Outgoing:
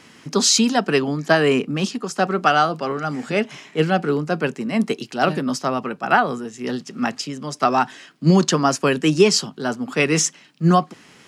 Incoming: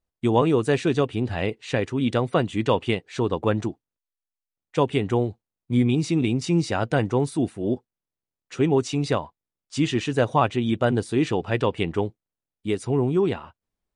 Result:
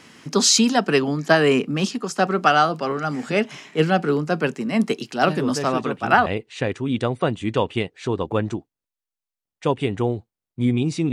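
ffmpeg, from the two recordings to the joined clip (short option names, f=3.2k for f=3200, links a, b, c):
-filter_complex "[1:a]asplit=2[a][b];[0:a]apad=whole_dur=11.12,atrim=end=11.12,atrim=end=6.262[c];[b]atrim=start=1.378:end=6.24[d];[a]atrim=start=0.51:end=1.38,asetpts=PTS-STARTPTS,volume=-7dB,afade=t=in:d=0.004:c=hsin,afade=t=out:st=0.866:d=0.004:c=hsin,adelay=5390[e];[c][d]acrossfade=d=0.004:c1=hsin:c2=hsin[f];[f][e]amix=inputs=2:normalize=0"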